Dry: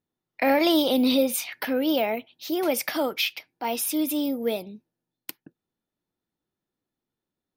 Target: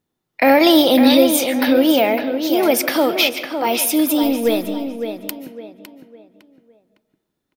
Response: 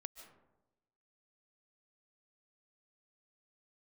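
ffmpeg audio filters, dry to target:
-filter_complex "[0:a]asplit=2[a][b];[b]adelay=557,lowpass=f=3.2k:p=1,volume=-7.5dB,asplit=2[c][d];[d]adelay=557,lowpass=f=3.2k:p=1,volume=0.35,asplit=2[e][f];[f]adelay=557,lowpass=f=3.2k:p=1,volume=0.35,asplit=2[g][h];[h]adelay=557,lowpass=f=3.2k:p=1,volume=0.35[i];[a][c][e][g][i]amix=inputs=5:normalize=0,asettb=1/sr,asplit=3[j][k][l];[j]atrim=end=4.234[m];[k]atrim=start=4.23:end=4.7,asetpts=PTS-STARTPTS,afade=t=in:d=0.004:c=qsin,afade=t=out:st=0.466:d=0.004:c=qsin,aeval=exprs='0.2*(cos(1*acos(clip(val(0)/0.2,-1,1)))-cos(1*PI/2))+0.00794*(cos(4*acos(clip(val(0)/0.2,-1,1)))-cos(4*PI/2))+0.00141*(cos(5*acos(clip(val(0)/0.2,-1,1)))-cos(5*PI/2))':c=same[n];[l]atrim=start=4.696[o];[m][n]acrossfade=d=0.004:c1=hsin:c2=qsin[p];[p][o]acrossfade=d=0.004:c1=qsin:c2=hsin,asplit=2[q][r];[1:a]atrim=start_sample=2205[s];[r][s]afir=irnorm=-1:irlink=0,volume=3.5dB[t];[q][t]amix=inputs=2:normalize=0,volume=3.5dB"

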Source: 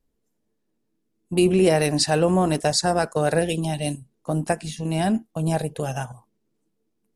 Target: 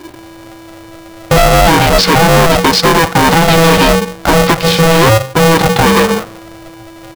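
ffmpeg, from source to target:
-filter_complex "[0:a]asettb=1/sr,asplit=3[a][b][c];[a]atrim=end=3.484[d];[b]atrim=start=3.48:end=3.93,asetpts=PTS-STARTPTS,afade=t=in:d=0.004:c=qsin,afade=t=out:st=0.446:d=0.004:c=qsin,aeval=exprs='val(0)+0.5*0.0376*sgn(val(0))':c=same[e];[c]atrim=start=3.926[f];[d][e]acrossfade=d=0.004:c1=hsin:c2=qsin[g];[g][f]acrossfade=d=0.004:c1=qsin:c2=hsin,bandreject=f=50:t=h:w=6,bandreject=f=100:t=h:w=6,bandreject=f=150:t=h:w=6,bandreject=f=200:t=h:w=6,acompressor=threshold=-41dB:ratio=5,apsyclip=34dB,asoftclip=type=tanh:threshold=-10.5dB,asplit=2[h][i];[i]adelay=200,highpass=300,lowpass=3.4k,asoftclip=type=hard:threshold=-19.5dB,volume=-20dB[j];[h][j]amix=inputs=2:normalize=0,aresample=11025,aresample=44100,aeval=exprs='val(0)*sgn(sin(2*PI*330*n/s))':c=same,volume=6dB"

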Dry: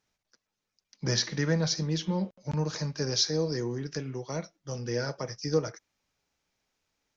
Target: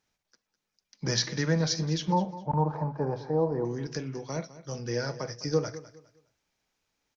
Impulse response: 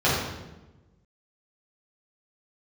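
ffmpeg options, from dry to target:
-filter_complex "[0:a]asettb=1/sr,asplit=3[a][b][c];[a]atrim=end=2.124[d];[b]atrim=start=2.12:end=3.65,asetpts=PTS-STARTPTS,afade=t=in:d=0.004:c=qsin,afade=t=out:st=1.526:d=0.004:c=qsin,lowpass=f=870:t=q:w=4.9[e];[c]atrim=start=3.646[f];[d][e]acrossfade=d=0.004:c1=hsin:c2=qsin[g];[g][f]acrossfade=d=0.004:c1=qsin:c2=hsin,aecho=1:1:205|410|615:0.158|0.0428|0.0116,asplit=2[h][i];[1:a]atrim=start_sample=2205,atrim=end_sample=3087[j];[i][j]afir=irnorm=-1:irlink=0,volume=-32dB[k];[h][k]amix=inputs=2:normalize=0"

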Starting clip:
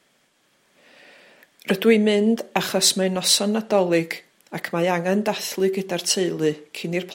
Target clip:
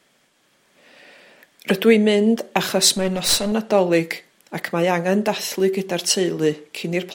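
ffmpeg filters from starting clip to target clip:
-filter_complex "[0:a]asettb=1/sr,asplit=3[a][b][c];[a]atrim=end=2.944[d];[b]atrim=start=2.94:end=3.52,asetpts=PTS-STARTPTS,afade=t=in:d=0.004:c=qsin,afade=t=out:st=0.576:d=0.004:c=qsin,aeval=exprs='clip(val(0),-1,0.0708)':c=same[e];[c]atrim=start=3.516[f];[d][e]acrossfade=d=0.004:c1=hsin:c2=qsin[g];[g][f]acrossfade=d=0.004:c1=qsin:c2=hsin,volume=2dB"

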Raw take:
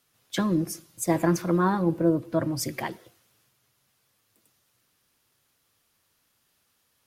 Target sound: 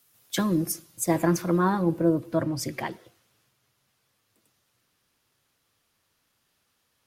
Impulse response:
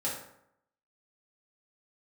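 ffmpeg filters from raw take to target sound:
-af "asetnsamples=n=441:p=0,asendcmd='0.72 highshelf g 4;2.43 highshelf g -6',highshelf=f=8.1k:g=12"

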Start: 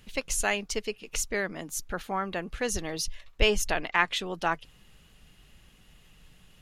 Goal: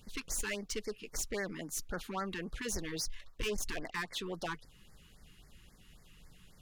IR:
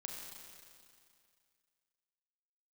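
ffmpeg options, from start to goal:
-filter_complex "[0:a]asplit=2[a][b];[b]alimiter=limit=-18dB:level=0:latency=1:release=449,volume=2dB[c];[a][c]amix=inputs=2:normalize=0,asoftclip=type=tanh:threshold=-22dB,afftfilt=real='re*(1-between(b*sr/1024,580*pow(3200/580,0.5+0.5*sin(2*PI*3.7*pts/sr))/1.41,580*pow(3200/580,0.5+0.5*sin(2*PI*3.7*pts/sr))*1.41))':imag='im*(1-between(b*sr/1024,580*pow(3200/580,0.5+0.5*sin(2*PI*3.7*pts/sr))/1.41,580*pow(3200/580,0.5+0.5*sin(2*PI*3.7*pts/sr))*1.41))':win_size=1024:overlap=0.75,volume=-9dB"

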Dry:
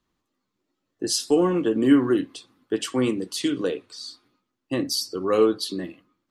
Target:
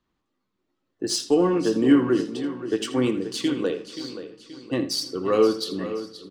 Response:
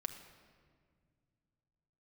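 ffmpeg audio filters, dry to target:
-filter_complex "[0:a]aecho=1:1:528|1056|1584|2112|2640:0.251|0.118|0.0555|0.0261|0.0123,asplit=2[a][b];[1:a]atrim=start_sample=2205,adelay=80[c];[b][c]afir=irnorm=-1:irlink=0,volume=-11.5dB[d];[a][d]amix=inputs=2:normalize=0,adynamicsmooth=sensitivity=3.5:basefreq=6.4k"

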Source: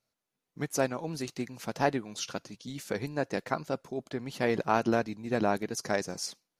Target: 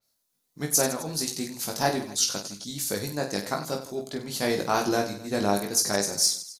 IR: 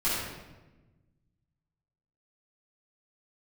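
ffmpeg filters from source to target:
-af "aecho=1:1:20|50|95|162.5|263.8:0.631|0.398|0.251|0.158|0.1,aexciter=amount=2.5:drive=7.4:freq=3.7k,adynamicequalizer=threshold=0.0112:dfrequency=4600:dqfactor=0.7:tfrequency=4600:tqfactor=0.7:attack=5:release=100:ratio=0.375:range=2:mode=boostabove:tftype=highshelf"

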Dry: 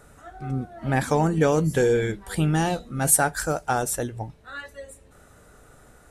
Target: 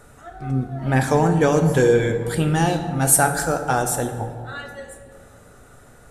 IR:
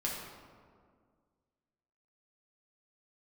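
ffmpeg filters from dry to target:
-filter_complex "[0:a]asplit=2[a][b];[1:a]atrim=start_sample=2205,asetrate=33957,aresample=44100[c];[b][c]afir=irnorm=-1:irlink=0,volume=-7.5dB[d];[a][d]amix=inputs=2:normalize=0"

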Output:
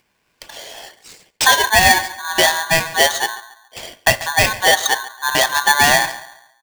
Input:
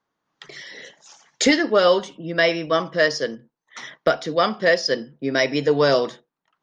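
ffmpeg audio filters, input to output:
-filter_complex "[0:a]agate=range=-33dB:threshold=-47dB:ratio=3:detection=peak,acompressor=mode=upward:threshold=-39dB:ratio=2.5,asplit=2[a][b];[b]adelay=139,lowpass=f=960:p=1,volume=-14.5dB,asplit=2[c][d];[d]adelay=139,lowpass=f=960:p=1,volume=0.4,asplit=2[e][f];[f]adelay=139,lowpass=f=960:p=1,volume=0.4,asplit=2[g][h];[h]adelay=139,lowpass=f=960:p=1,volume=0.4[i];[c][e][g][i]amix=inputs=4:normalize=0[j];[a][j]amix=inputs=2:normalize=0,aeval=exprs='val(0)*sgn(sin(2*PI*1300*n/s))':c=same,volume=4dB"

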